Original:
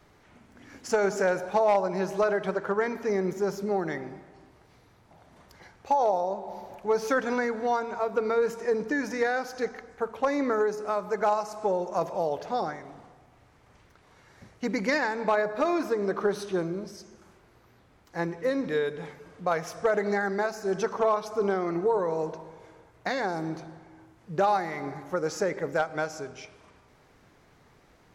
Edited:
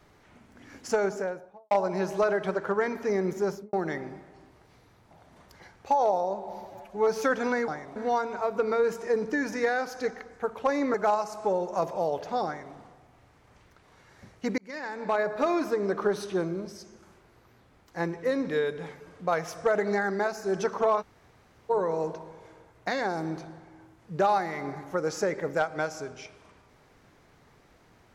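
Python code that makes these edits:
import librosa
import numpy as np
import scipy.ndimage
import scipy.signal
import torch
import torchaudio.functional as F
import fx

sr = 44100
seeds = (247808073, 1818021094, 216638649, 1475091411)

y = fx.studio_fade_out(x, sr, start_s=0.79, length_s=0.92)
y = fx.studio_fade_out(y, sr, start_s=3.47, length_s=0.26)
y = fx.edit(y, sr, fx.stretch_span(start_s=6.65, length_s=0.28, factor=1.5),
    fx.cut(start_s=10.52, length_s=0.61),
    fx.duplicate(start_s=12.65, length_s=0.28, to_s=7.54),
    fx.fade_in_span(start_s=14.77, length_s=0.72),
    fx.room_tone_fill(start_s=21.21, length_s=0.68, crossfade_s=0.02), tone=tone)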